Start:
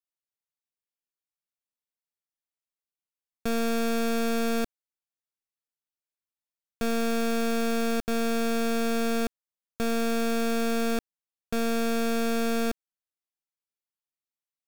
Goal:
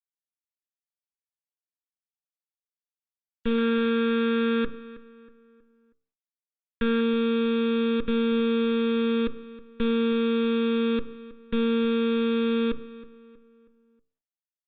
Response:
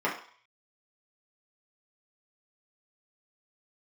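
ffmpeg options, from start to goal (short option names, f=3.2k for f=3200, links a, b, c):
-filter_complex "[0:a]bandreject=f=64.55:t=h:w=4,bandreject=f=129.1:t=h:w=4,bandreject=f=193.65:t=h:w=4,bandreject=f=258.2:t=h:w=4,bandreject=f=322.75:t=h:w=4,bandreject=f=387.3:t=h:w=4,bandreject=f=451.85:t=h:w=4,bandreject=f=516.4:t=h:w=4,bandreject=f=580.95:t=h:w=4,bandreject=f=645.5:t=h:w=4,bandreject=f=710.05:t=h:w=4,bandreject=f=774.6:t=h:w=4,bandreject=f=839.15:t=h:w=4,bandreject=f=903.7:t=h:w=4,bandreject=f=968.25:t=h:w=4,bandreject=f=1.0328k:t=h:w=4,bandreject=f=1.09735k:t=h:w=4,bandreject=f=1.1619k:t=h:w=4,bandreject=f=1.22645k:t=h:w=4,bandreject=f=1.291k:t=h:w=4,bandreject=f=1.35555k:t=h:w=4,bandreject=f=1.4201k:t=h:w=4,bandreject=f=1.48465k:t=h:w=4,agate=range=-33dB:threshold=-55dB:ratio=3:detection=peak,asuperstop=centerf=700:order=12:qfactor=1.8,asettb=1/sr,asplit=3[a][b][c];[a]atrim=end=3.584[d];[b]atrim=start=3.58:end=7.01,asetpts=PTS-STARTPTS,afade=t=in:d=0.004:c=qsin,afade=t=out:st=3.426:d=0.004:c=qsin,equalizer=f=1.6k:t=o:w=0.53:g=8.5[e];[c]atrim=start=7.006[f];[d][e]acrossfade=d=0.004:c1=hsin:c2=qsin[g];[g][f]acrossfade=d=0.004:c1=qsin:c2=hsin,aecho=1:1:4.1:0.53,asplit=2[h][i];[i]adelay=319,lowpass=f=2.7k:p=1,volume=-17dB,asplit=2[j][k];[k]adelay=319,lowpass=f=2.7k:p=1,volume=0.42,asplit=2[l][m];[m]adelay=319,lowpass=f=2.7k:p=1,volume=0.42,asplit=2[n][o];[o]adelay=319,lowpass=f=2.7k:p=1,volume=0.42[p];[h][j][l][n][p]amix=inputs=5:normalize=0,aresample=8000,aresample=44100,volume=1.5dB" -ar 48000 -c:a libopus -b:a 20k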